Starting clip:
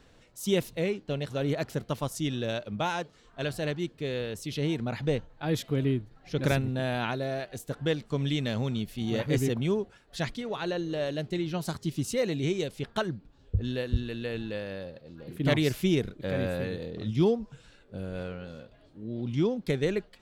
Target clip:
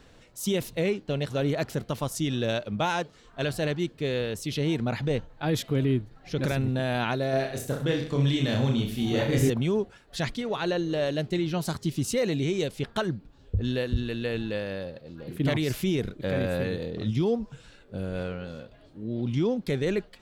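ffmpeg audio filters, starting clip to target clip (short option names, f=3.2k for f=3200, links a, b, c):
-filter_complex "[0:a]alimiter=limit=-21dB:level=0:latency=1:release=22,asettb=1/sr,asplit=3[a][b][c];[a]atrim=end=7.304[d];[b]atrim=start=7.3:end=9.5,asetpts=PTS-STARTPTS,afade=t=in:d=0.004:c=qsin,afade=t=out:st=2.196:d=0.004:c=qsin,aecho=1:1:30|64.5|104.2|149.8|202.3:0.631|0.398|0.251|0.158|0.1,atrim=end_sample=97020[e];[c]atrim=start=9.496[f];[d][e]acrossfade=d=0.004:c1=hsin:c2=qsin[g];[g][f]acrossfade=d=0.004:c1=qsin:c2=hsin,volume=4dB"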